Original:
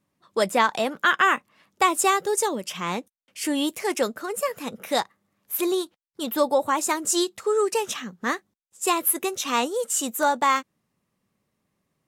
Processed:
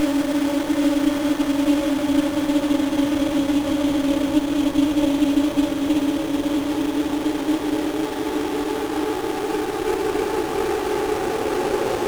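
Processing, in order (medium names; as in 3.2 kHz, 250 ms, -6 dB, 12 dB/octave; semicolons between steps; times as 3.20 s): Paulstretch 31×, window 0.50 s, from 3.49 s; sliding maximum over 17 samples; trim +5.5 dB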